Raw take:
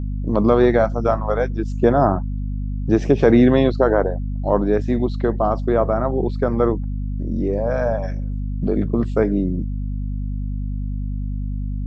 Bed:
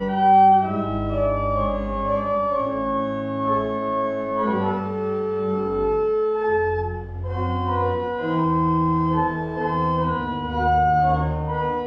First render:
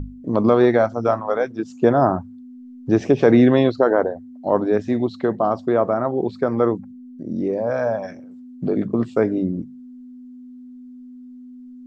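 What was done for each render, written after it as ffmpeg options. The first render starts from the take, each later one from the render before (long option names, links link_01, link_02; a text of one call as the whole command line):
ffmpeg -i in.wav -af "bandreject=frequency=50:width_type=h:width=6,bandreject=frequency=100:width_type=h:width=6,bandreject=frequency=150:width_type=h:width=6,bandreject=frequency=200:width_type=h:width=6" out.wav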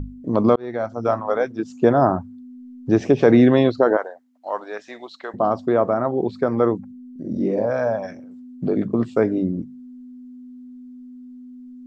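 ffmpeg -i in.wav -filter_complex "[0:a]asettb=1/sr,asplit=3[link_01][link_02][link_03];[link_01]atrim=end=3.974[link_04];[link_02]atrim=start=3.97:end=5.34,asetpts=PTS-STARTPTS,afade=type=in:duration=0.004:curve=qsin,afade=type=out:start_time=1.366:duration=0.004:curve=qsin,highpass=930[link_05];[link_03]atrim=start=5.336[link_06];[link_04][link_05]acrossfade=duration=0.004:curve1=hsin:curve2=qsin[link_07];[link_07][link_06]acrossfade=duration=0.004:curve1=qsin:curve2=hsin,asettb=1/sr,asplit=3[link_08][link_09][link_10];[link_08]atrim=end=7.114[link_11];[link_09]atrim=start=7.11:end=7.66,asetpts=PTS-STARTPTS,afade=type=in:duration=0.004:curve=qsin,afade=type=out:start_time=0.546:duration=0.004:curve=qsin,asplit=2[link_12][link_13];[link_13]adelay=47,volume=-2dB[link_14];[link_12][link_14]amix=inputs=2:normalize=0,atrim=end_sample=24255[link_15];[link_10]atrim=start=7.656[link_16];[link_11][link_15]acrossfade=duration=0.004:curve1=hsin:curve2=qsin[link_17];[link_17][link_16]acrossfade=duration=0.004:curve1=qsin:curve2=hsin,asplit=2[link_18][link_19];[link_18]atrim=end=0.56,asetpts=PTS-STARTPTS,afade=type=out:start_time=0.556:duration=0.004:curve=hsin[link_20];[link_19]atrim=start=0.56,asetpts=PTS-STARTPTS,afade=type=in:duration=0.63[link_21];[link_20][link_21]concat=n=2:v=0:a=1" out.wav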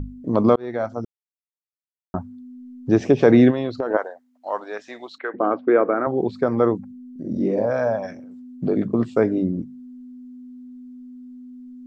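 ffmpeg -i in.wav -filter_complex "[0:a]asplit=3[link_01][link_02][link_03];[link_01]afade=type=out:start_time=3.5:duration=0.02[link_04];[link_02]acompressor=threshold=-19dB:ratio=10:attack=3.2:release=140:knee=1:detection=peak,afade=type=in:start_time=3.5:duration=0.02,afade=type=out:start_time=3.93:duration=0.02[link_05];[link_03]afade=type=in:start_time=3.93:duration=0.02[link_06];[link_04][link_05][link_06]amix=inputs=3:normalize=0,asettb=1/sr,asplit=3[link_07][link_08][link_09];[link_07]atrim=end=5.184[link_10];[link_08]atrim=start=5.18:end=6.07,asetpts=PTS-STARTPTS,afade=type=in:duration=0.004:curve=qsin,afade=type=out:start_time=0.886:duration=0.004:curve=qsin,highpass=300,equalizer=frequency=310:width_type=q:width=4:gain=9,equalizer=frequency=460:width_type=q:width=4:gain=5,equalizer=frequency=660:width_type=q:width=4:gain=-5,equalizer=frequency=950:width_type=q:width=4:gain=-4,equalizer=frequency=1500:width_type=q:width=4:gain=7,equalizer=frequency=2300:width_type=q:width=4:gain=8,lowpass=frequency=2700:width=0.5412,lowpass=frequency=2700:width=1.3066[link_11];[link_09]atrim=start=6.066[link_12];[link_10][link_11]acrossfade=duration=0.004:curve1=hsin:curve2=qsin[link_13];[link_13][link_12]acrossfade=duration=0.004:curve1=qsin:curve2=hsin,asplit=3[link_14][link_15][link_16];[link_14]atrim=end=1.05,asetpts=PTS-STARTPTS,afade=type=out:start_time=1.046:duration=0.004:curve=hsin[link_17];[link_15]atrim=start=1.05:end=2.14,asetpts=PTS-STARTPTS,volume=0[link_18];[link_16]atrim=start=2.14,asetpts=PTS-STARTPTS,afade=type=in:duration=0.004:curve=hsin[link_19];[link_17][link_18][link_19]concat=n=3:v=0:a=1" out.wav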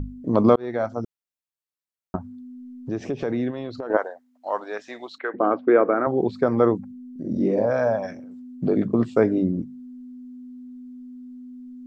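ffmpeg -i in.wav -filter_complex "[0:a]asettb=1/sr,asplit=3[link_01][link_02][link_03];[link_01]atrim=end=2.164[link_04];[link_02]atrim=start=2.16:end=3.9,asetpts=PTS-STARTPTS,afade=type=in:duration=0.004:curve=qsin,afade=type=out:start_time=1.736:duration=0.004:curve=qsin,acompressor=threshold=-32dB:ratio=2:attack=3.2:release=140:knee=1:detection=peak[link_05];[link_03]atrim=start=3.896[link_06];[link_04][link_05]acrossfade=duration=0.004:curve1=hsin:curve2=qsin[link_07];[link_07][link_06]acrossfade=duration=0.004:curve1=qsin:curve2=hsin" out.wav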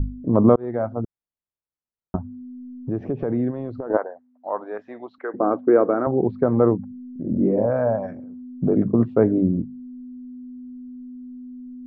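ffmpeg -i in.wav -af "lowpass=1200,lowshelf=frequency=160:gain=8.5" out.wav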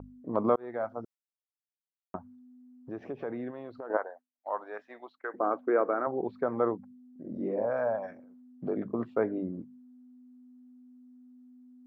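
ffmpeg -i in.wav -af "agate=range=-33dB:threshold=-36dB:ratio=3:detection=peak,highpass=frequency=1400:poles=1" out.wav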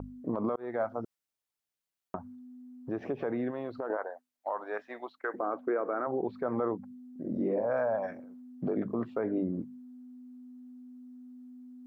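ffmpeg -i in.wav -filter_complex "[0:a]asplit=2[link_01][link_02];[link_02]acompressor=threshold=-35dB:ratio=6,volume=-1dB[link_03];[link_01][link_03]amix=inputs=2:normalize=0,alimiter=limit=-22dB:level=0:latency=1:release=48" out.wav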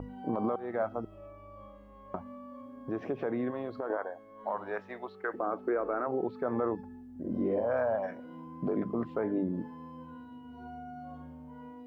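ffmpeg -i in.wav -i bed.wav -filter_complex "[1:a]volume=-28dB[link_01];[0:a][link_01]amix=inputs=2:normalize=0" out.wav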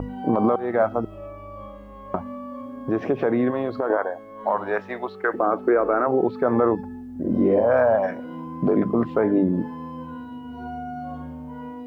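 ffmpeg -i in.wav -af "volume=11.5dB" out.wav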